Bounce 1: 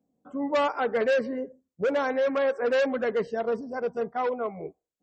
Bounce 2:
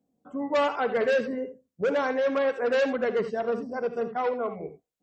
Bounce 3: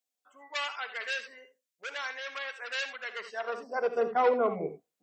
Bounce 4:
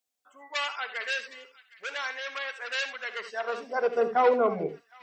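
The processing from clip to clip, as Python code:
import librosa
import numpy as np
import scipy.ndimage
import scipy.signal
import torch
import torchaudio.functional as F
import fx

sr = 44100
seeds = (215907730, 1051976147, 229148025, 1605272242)

y1 = fx.rev_gated(x, sr, seeds[0], gate_ms=100, shape='rising', drr_db=9.5)
y2 = fx.filter_sweep_highpass(y1, sr, from_hz=2200.0, to_hz=150.0, start_s=3.04, end_s=4.55, q=0.74)
y2 = y2 * 10.0 ** (3.0 / 20.0)
y3 = fx.echo_wet_highpass(y2, sr, ms=762, feedback_pct=38, hz=1900.0, wet_db=-17.5)
y3 = y3 * 10.0 ** (3.0 / 20.0)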